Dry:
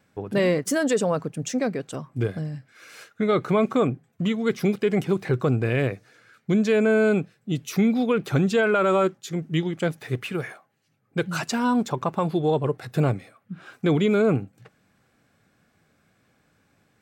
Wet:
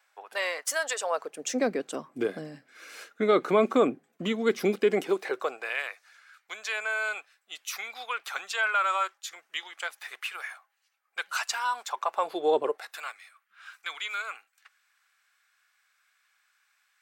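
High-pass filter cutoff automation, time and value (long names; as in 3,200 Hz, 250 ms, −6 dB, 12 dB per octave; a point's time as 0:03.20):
high-pass filter 24 dB per octave
0:00.99 760 Hz
0:01.64 250 Hz
0:04.88 250 Hz
0:05.83 910 Hz
0:11.86 910 Hz
0:12.61 330 Hz
0:13.01 1,200 Hz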